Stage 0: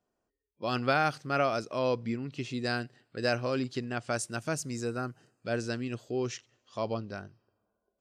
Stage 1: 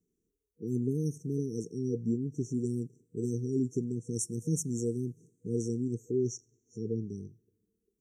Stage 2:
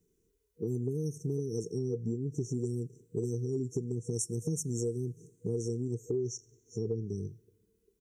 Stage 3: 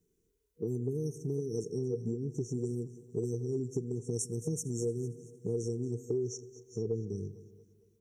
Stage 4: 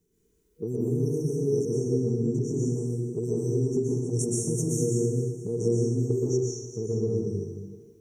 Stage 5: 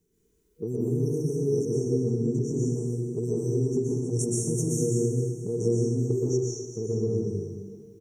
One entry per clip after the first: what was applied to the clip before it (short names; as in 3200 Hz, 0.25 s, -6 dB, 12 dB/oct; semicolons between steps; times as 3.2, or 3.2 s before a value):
FFT band-reject 480–5500 Hz; bell 170 Hz +9 dB 0.21 oct; gain +2.5 dB
comb 2 ms, depth 46%; compressor, threshold -37 dBFS, peak gain reduction 11.5 dB; gain +7 dB
dynamic EQ 680 Hz, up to +4 dB, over -46 dBFS, Q 0.91; split-band echo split 450 Hz, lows 0.161 s, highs 0.228 s, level -16 dB; gain -2 dB
plate-style reverb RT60 1.3 s, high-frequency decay 0.75×, pre-delay 0.11 s, DRR -5 dB; gain +2.5 dB
feedback echo 0.262 s, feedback 49%, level -16 dB